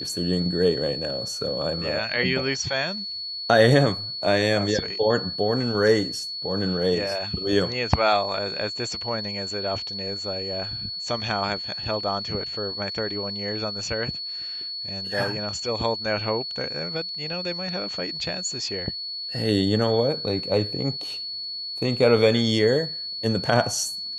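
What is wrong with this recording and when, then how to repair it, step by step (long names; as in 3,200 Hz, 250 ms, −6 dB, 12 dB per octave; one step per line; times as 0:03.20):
whistle 4,400 Hz −30 dBFS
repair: notch filter 4,400 Hz, Q 30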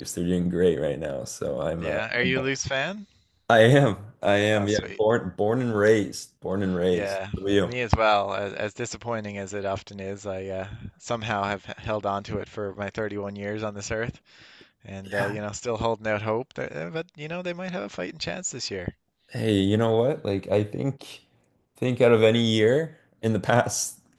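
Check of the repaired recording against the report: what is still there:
none of them is left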